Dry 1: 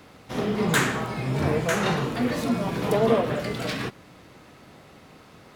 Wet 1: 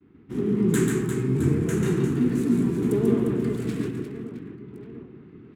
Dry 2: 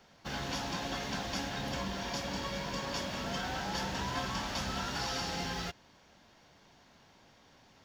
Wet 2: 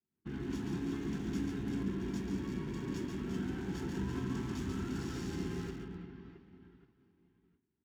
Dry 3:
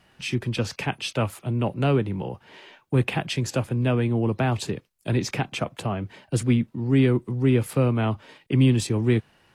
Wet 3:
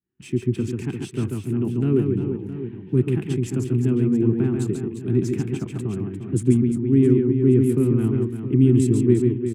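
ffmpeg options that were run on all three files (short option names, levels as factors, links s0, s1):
-filter_complex "[0:a]highpass=51,asplit=2[s0][s1];[s1]aecho=0:1:140|350|665|1138|1846:0.631|0.398|0.251|0.158|0.1[s2];[s0][s2]amix=inputs=2:normalize=0,agate=range=0.0224:threshold=0.00562:ratio=3:detection=peak,firequalizer=gain_entry='entry(110,0);entry(380,6);entry(550,-24);entry(930,-15);entry(1500,-11);entry(4800,-9);entry(7700,8)':delay=0.05:min_phase=1,acrossover=split=730|3100[s3][s4][s5];[s5]aeval=exprs='sgn(val(0))*max(abs(val(0))-0.00422,0)':c=same[s6];[s3][s4][s6]amix=inputs=3:normalize=0,aemphasis=mode=reproduction:type=50kf"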